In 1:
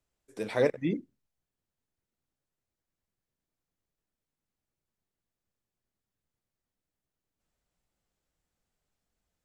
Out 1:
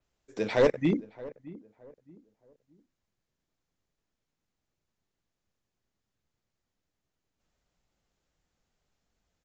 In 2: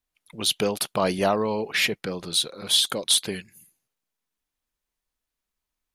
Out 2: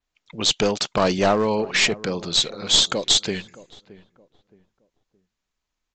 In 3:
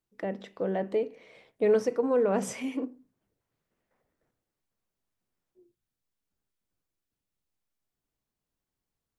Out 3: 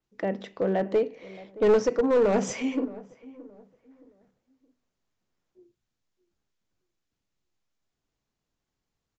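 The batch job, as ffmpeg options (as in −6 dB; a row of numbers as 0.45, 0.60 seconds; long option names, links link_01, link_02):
-filter_complex "[0:a]aresample=16000,aeval=exprs='clip(val(0),-1,0.075)':channel_layout=same,aresample=44100,asplit=2[link_01][link_02];[link_02]adelay=620,lowpass=frequency=1100:poles=1,volume=-18.5dB,asplit=2[link_03][link_04];[link_04]adelay=620,lowpass=frequency=1100:poles=1,volume=0.33,asplit=2[link_05][link_06];[link_06]adelay=620,lowpass=frequency=1100:poles=1,volume=0.33[link_07];[link_01][link_03][link_05][link_07]amix=inputs=4:normalize=0,adynamicequalizer=threshold=0.00891:dfrequency=5800:dqfactor=0.7:tfrequency=5800:tqfactor=0.7:attack=5:release=100:ratio=0.375:range=4:mode=boostabove:tftype=highshelf,volume=4.5dB"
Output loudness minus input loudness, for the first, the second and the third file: +3.5, +3.5, +3.5 LU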